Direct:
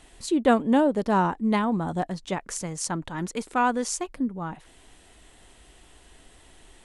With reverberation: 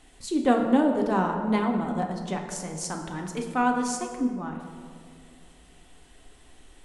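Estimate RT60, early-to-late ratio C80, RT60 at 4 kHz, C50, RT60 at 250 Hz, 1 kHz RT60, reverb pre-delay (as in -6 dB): 2.3 s, 7.0 dB, 1.1 s, 5.5 dB, 2.5 s, 2.0 s, 3 ms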